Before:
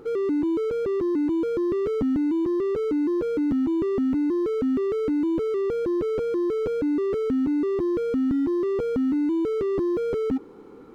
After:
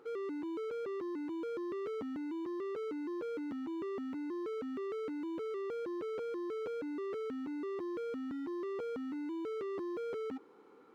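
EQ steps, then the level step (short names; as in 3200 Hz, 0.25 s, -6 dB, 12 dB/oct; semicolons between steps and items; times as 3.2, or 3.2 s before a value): HPF 1100 Hz 6 dB/oct; high shelf 3800 Hz -8 dB; -5.0 dB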